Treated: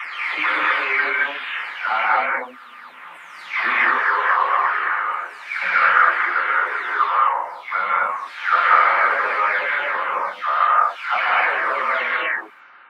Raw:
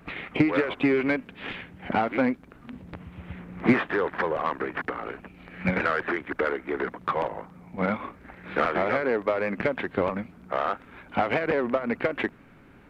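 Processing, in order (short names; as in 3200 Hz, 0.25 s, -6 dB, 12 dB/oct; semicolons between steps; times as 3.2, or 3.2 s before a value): spectral delay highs early, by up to 0.548 s; resonant high-pass 1200 Hz, resonance Q 2.2; non-linear reverb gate 0.27 s rising, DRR -4.5 dB; gain +4.5 dB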